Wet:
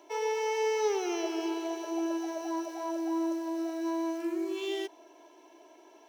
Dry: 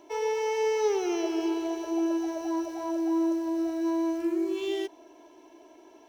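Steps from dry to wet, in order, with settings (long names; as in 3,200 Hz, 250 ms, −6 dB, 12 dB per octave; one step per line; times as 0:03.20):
Bessel high-pass filter 430 Hz, order 2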